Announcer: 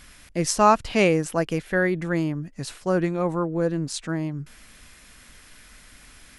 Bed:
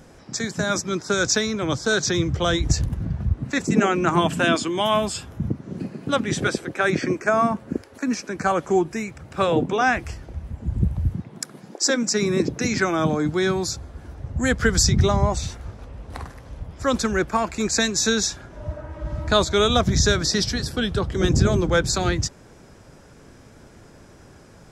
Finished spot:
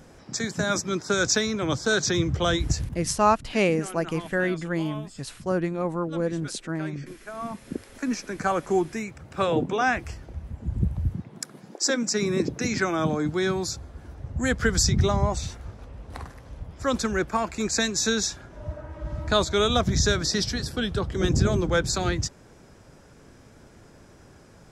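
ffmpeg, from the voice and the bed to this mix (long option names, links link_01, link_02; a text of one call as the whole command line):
ffmpeg -i stem1.wav -i stem2.wav -filter_complex "[0:a]adelay=2600,volume=-3dB[link_01];[1:a]volume=13.5dB,afade=type=out:start_time=2.49:duration=0.7:silence=0.141254,afade=type=in:start_time=7.34:duration=0.58:silence=0.16788[link_02];[link_01][link_02]amix=inputs=2:normalize=0" out.wav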